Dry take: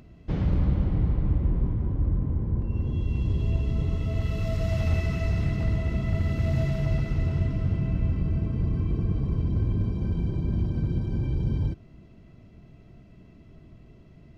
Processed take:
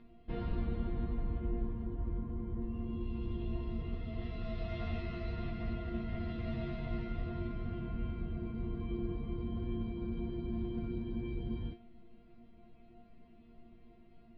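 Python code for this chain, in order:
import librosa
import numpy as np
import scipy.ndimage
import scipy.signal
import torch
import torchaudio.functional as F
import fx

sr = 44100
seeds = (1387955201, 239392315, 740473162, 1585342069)

y = scipy.signal.sosfilt(scipy.signal.butter(6, 4200.0, 'lowpass', fs=sr, output='sos'), x)
y = fx.resonator_bank(y, sr, root=58, chord='fifth', decay_s=0.27)
y = y * librosa.db_to_amplitude(9.5)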